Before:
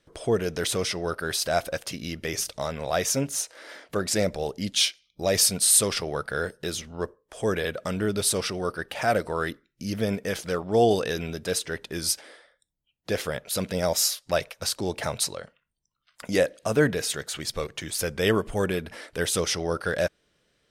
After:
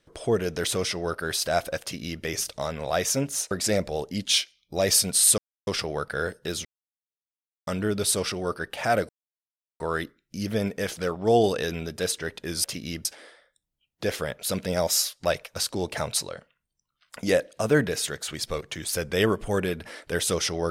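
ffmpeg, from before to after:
-filter_complex "[0:a]asplit=8[a][b][c][d][e][f][g][h];[a]atrim=end=3.512[i];[b]atrim=start=3.978:end=5.85,asetpts=PTS-STARTPTS,afade=t=out:st=1.868:d=0.004:c=hsin,apad=pad_dur=0.29[j];[c]atrim=start=5.85:end=6.83,asetpts=PTS-STARTPTS,afade=t=in:d=0.004:c=hsin,afade=t=out:st=0.976:d=0.004:c=hsin[k];[d]atrim=start=6.83:end=7.85,asetpts=PTS-STARTPTS,volume=0[l];[e]atrim=start=7.85:end=9.27,asetpts=PTS-STARTPTS,afade=t=in:d=0.004:c=hsin,afade=t=out:st=1.416:d=0.004:c=hsin,apad=pad_dur=0.71[m];[f]atrim=start=9.27:end=12.112,asetpts=PTS-STARTPTS,afade=t=in:d=0.004:c=hsin[n];[g]atrim=start=1.818:end=2.232[o];[h]atrim=start=12.108[p];[j][k][l][m][n]concat=n=5:v=0:a=1[q];[i][q]acrossfade=d=0.004:c1=hsin:c2=hsin[r];[r][o]acrossfade=d=0.004:c1=hsin:c2=hsin[s];[s][p]acrossfade=d=0.004:c1=hsin:c2=hsin"

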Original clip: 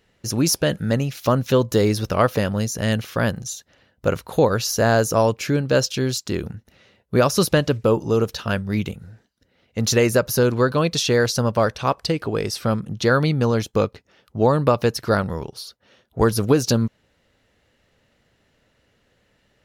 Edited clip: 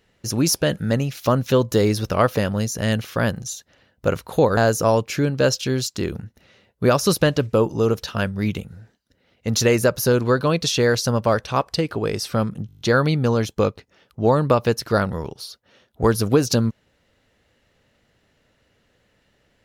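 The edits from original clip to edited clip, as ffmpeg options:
-filter_complex "[0:a]asplit=9[a][b][c][d][e][f][g][h][i];[a]atrim=end=4.572[j];[b]atrim=start=4.878:end=13.002[k];[c]atrim=start=12.978:end=13.002[l];[d]atrim=start=12.978:end=13.002[m];[e]atrim=start=12.978:end=13.002[n];[f]atrim=start=12.978:end=13.002[o];[g]atrim=start=12.978:end=13.002[p];[h]atrim=start=12.978:end=13.002[q];[i]atrim=start=12.978[r];[j][k]acrossfade=d=0.004:c1=hsin:c2=hsin[s];[s][l]acrossfade=d=0.004:c1=hsin:c2=hsin[t];[t][m]acrossfade=d=0.004:c1=hsin:c2=hsin[u];[u][n]acrossfade=d=0.004:c1=hsin:c2=hsin[v];[v][o]acrossfade=d=0.004:c1=hsin:c2=hsin[w];[w][p]acrossfade=d=0.004:c1=hsin:c2=hsin[x];[x][q]acrossfade=d=0.004:c1=hsin:c2=hsin[y];[y][r]acrossfade=d=0.004:c1=hsin:c2=hsin"

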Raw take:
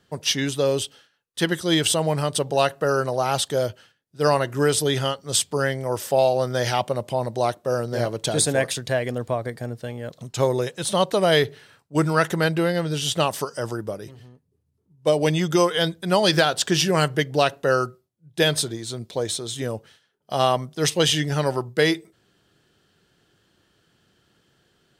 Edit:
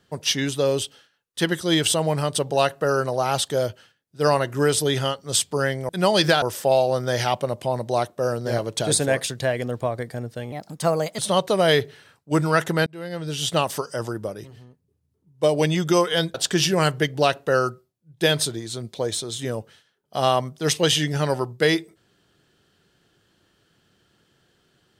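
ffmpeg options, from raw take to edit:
-filter_complex "[0:a]asplit=7[a][b][c][d][e][f][g];[a]atrim=end=5.892[h];[b]atrim=start=15.978:end=16.512[i];[c]atrim=start=5.888:end=9.994[j];[d]atrim=start=9.99:end=10.82,asetpts=PTS-STARTPTS,asetrate=55125,aresample=44100,atrim=end_sample=29282,asetpts=PTS-STARTPTS[k];[e]atrim=start=10.816:end=12.5,asetpts=PTS-STARTPTS,afade=t=out:st=1.68:d=0.004:c=hsin[l];[f]atrim=start=12.5:end=15.982,asetpts=PTS-STARTPTS,afade=t=in:d=0.64[m];[g]atrim=start=16.508[n];[h][i]acrossfade=d=0.004:c1=hsin:c2=hsin[o];[o][j]acrossfade=d=0.004:c1=hsin:c2=hsin[p];[p][k]acrossfade=d=0.004:c1=hsin:c2=hsin[q];[l][m]concat=n=2:v=0:a=1[r];[q][r]acrossfade=d=0.004:c1=hsin:c2=hsin[s];[s][n]acrossfade=d=0.004:c1=hsin:c2=hsin"

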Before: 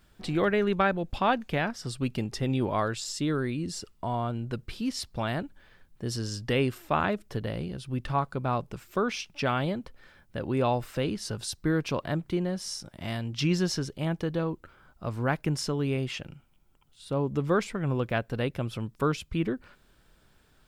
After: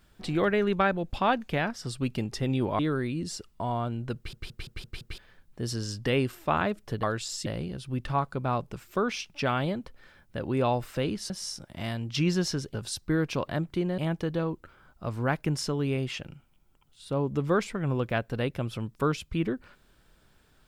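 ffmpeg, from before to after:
-filter_complex "[0:a]asplit=13[a][b][c][d][e][f][g][h][i][j][k][l][m];[a]atrim=end=2.792[n];[b]atrim=start=3.218:end=4.762[o];[c]atrim=start=4.588:end=4.762[p];[d]atrim=start=4.588:end=4.762[q];[e]atrim=start=4.588:end=4.762[r];[f]atrim=start=4.588:end=4.762[s];[g]atrim=start=4.588:end=4.762[t];[h]atrim=start=5.608:end=7.462[u];[i]atrim=start=2.788:end=3.222[v];[j]atrim=start=7.458:end=11.302[w];[k]atrim=start=12.538:end=13.982[x];[l]atrim=start=11.298:end=12.542[y];[m]atrim=start=13.978[z];[n][o]acrossfade=d=0.004:c1=hsin:c2=hsin[aa];[aa][p]acrossfade=d=0.004:c1=hsin:c2=hsin[ab];[ab][q]acrossfade=d=0.004:c1=hsin:c2=hsin[ac];[ac][r]acrossfade=d=0.004:c1=hsin:c2=hsin[ad];[ad][s]acrossfade=d=0.004:c1=hsin:c2=hsin[ae];[ae][t]acrossfade=d=0.004:c1=hsin:c2=hsin[af];[af][u]acrossfade=d=0.004:c1=hsin:c2=hsin[ag];[ag][v]acrossfade=d=0.004:c1=hsin:c2=hsin[ah];[ah][w]acrossfade=d=0.004:c1=hsin:c2=hsin[ai];[ai][x]acrossfade=d=0.004:c1=hsin:c2=hsin[aj];[aj][y]acrossfade=d=0.004:c1=hsin:c2=hsin[ak];[ak][z]acrossfade=d=0.004:c1=hsin:c2=hsin"

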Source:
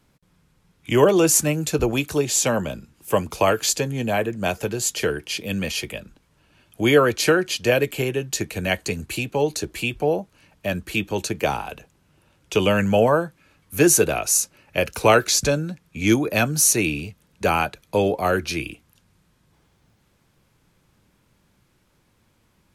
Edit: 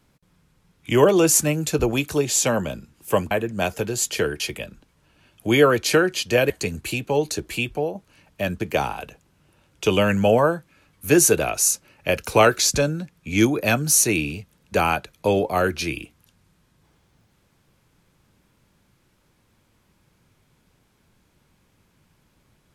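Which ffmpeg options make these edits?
-filter_complex "[0:a]asplit=6[a][b][c][d][e][f];[a]atrim=end=3.312[g];[b]atrim=start=4.148:end=5.242[h];[c]atrim=start=5.738:end=7.842[i];[d]atrim=start=8.748:end=10.2,asetpts=PTS-STARTPTS,afade=t=out:st=1.162:d=0.29:silence=0.375837[j];[e]atrim=start=10.2:end=10.852,asetpts=PTS-STARTPTS,afade=t=in:d=0.004:c=hsin:silence=0.375837[k];[f]atrim=start=11.288[l];[g][h]acrossfade=d=0.004:c1=hsin:c2=hsin[m];[m][i]acrossfade=d=0.004:c1=hsin:c2=hsin[n];[j][k]concat=n=2:v=0:a=1[o];[n][o]acrossfade=d=0.004:c1=hsin:c2=hsin[p];[p][l]acrossfade=d=0.004:c1=hsin:c2=hsin"

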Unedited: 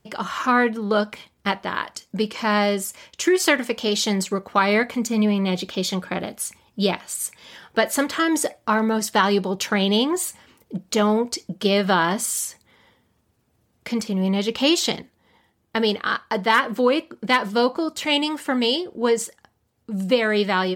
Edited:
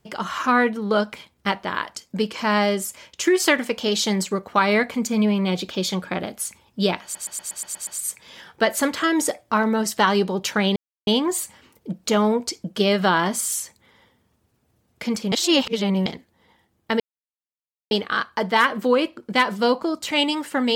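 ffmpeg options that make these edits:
-filter_complex "[0:a]asplit=12[a][b][c][d][e][f][g][h][i][j][k][l];[a]atrim=end=7.152[m];[b]atrim=start=7.028:end=7.152[n];[c]atrim=start=7.028:end=7.152[o];[d]atrim=start=7.028:end=7.152[p];[e]atrim=start=7.028:end=7.152[q];[f]atrim=start=7.028:end=7.152[r];[g]atrim=start=7.028:end=7.152[s];[h]atrim=start=7.028:end=9.92,asetpts=PTS-STARTPTS,afade=t=out:st=2.888:d=0.004:c=hsin,apad=pad_dur=0.31[t];[i]atrim=start=9.92:end=14.172,asetpts=PTS-STARTPTS,afade=t=in:d=0.004:c=hsin[u];[j]atrim=start=14.168:end=14.912,asetpts=PTS-STARTPTS,areverse[v];[k]atrim=start=14.908:end=15.85,asetpts=PTS-STARTPTS,afade=t=out:st=0.938:d=0.004:c=hsin,apad=pad_dur=0.91[w];[l]atrim=start=15.85,asetpts=PTS-STARTPTS,afade=t=in:d=0.004:c=hsin[x];[m][n]acrossfade=d=0.004:c1=hsin:c2=hsin[y];[y][o]acrossfade=d=0.004:c1=hsin:c2=hsin[z];[z][p]acrossfade=d=0.004:c1=hsin:c2=hsin[aa];[aa][q]acrossfade=d=0.004:c1=hsin:c2=hsin[ab];[ab][r]acrossfade=d=0.004:c1=hsin:c2=hsin[ac];[ac][s]acrossfade=d=0.004:c1=hsin:c2=hsin[ad];[t][u]concat=n=2:v=0:a=1[ae];[ad][ae]acrossfade=d=0.004:c1=hsin:c2=hsin[af];[af][v]acrossfade=d=0.004:c1=hsin:c2=hsin[ag];[w][x]concat=n=2:v=0:a=1[ah];[ag][ah]acrossfade=d=0.004:c1=hsin:c2=hsin"

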